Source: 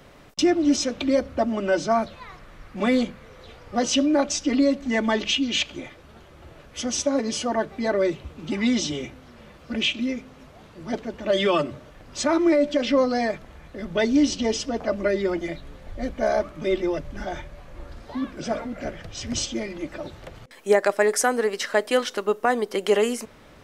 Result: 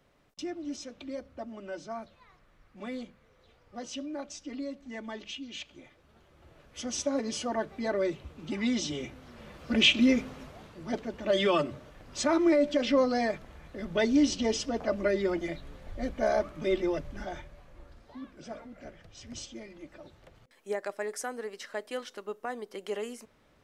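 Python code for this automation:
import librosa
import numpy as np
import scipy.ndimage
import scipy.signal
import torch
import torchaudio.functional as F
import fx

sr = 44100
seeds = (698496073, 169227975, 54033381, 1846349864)

y = fx.gain(x, sr, db=fx.line((5.59, -17.5), (7.06, -7.0), (8.81, -7.0), (10.19, 5.0), (10.81, -4.5), (16.97, -4.5), (18.17, -15.0)))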